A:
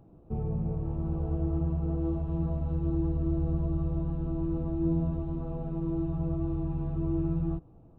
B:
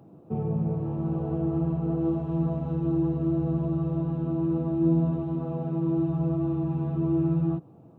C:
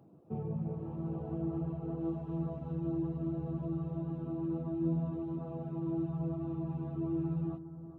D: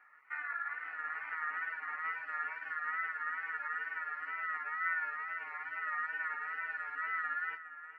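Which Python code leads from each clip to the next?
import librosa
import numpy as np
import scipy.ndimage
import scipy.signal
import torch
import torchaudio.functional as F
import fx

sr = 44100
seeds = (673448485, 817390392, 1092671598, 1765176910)

y1 = scipy.signal.sosfilt(scipy.signal.butter(4, 120.0, 'highpass', fs=sr, output='sos'), x)
y1 = F.gain(torch.from_numpy(y1), 6.0).numpy()
y2 = fx.dereverb_blind(y1, sr, rt60_s=0.51)
y2 = fx.echo_bbd(y2, sr, ms=411, stages=4096, feedback_pct=51, wet_db=-12.5)
y2 = F.gain(torch.from_numpy(y2), -8.0).numpy()
y3 = y2 * np.sin(2.0 * np.pi * 1600.0 * np.arange(len(y2)) / sr)
y3 = fx.wow_flutter(y3, sr, seeds[0], rate_hz=2.1, depth_cents=66.0)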